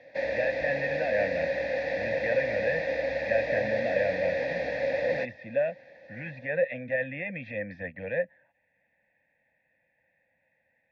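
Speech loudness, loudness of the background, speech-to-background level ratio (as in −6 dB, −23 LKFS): −32.0 LKFS, −30.0 LKFS, −2.0 dB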